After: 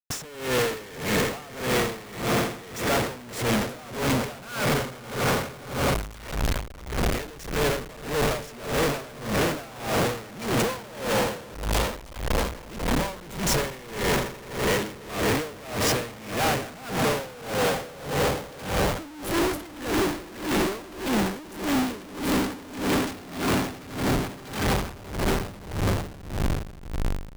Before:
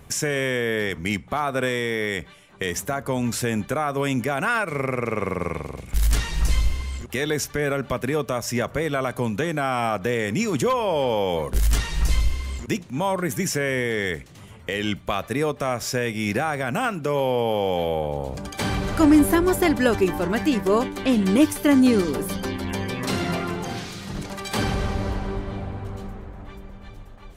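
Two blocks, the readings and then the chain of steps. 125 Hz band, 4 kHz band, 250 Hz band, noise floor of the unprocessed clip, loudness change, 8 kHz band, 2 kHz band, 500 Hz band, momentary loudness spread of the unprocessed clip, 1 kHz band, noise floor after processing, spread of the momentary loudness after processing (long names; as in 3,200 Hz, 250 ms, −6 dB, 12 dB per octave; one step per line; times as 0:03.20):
−2.5 dB, +1.0 dB, −5.5 dB, −45 dBFS, −3.5 dB, 0.0 dB, −2.0 dB, −3.5 dB, 12 LU, −2.0 dB, −42 dBFS, 7 LU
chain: echo that builds up and dies away 83 ms, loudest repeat 8, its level −14 dB
comparator with hysteresis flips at −32.5 dBFS
tremolo with a sine in dB 1.7 Hz, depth 21 dB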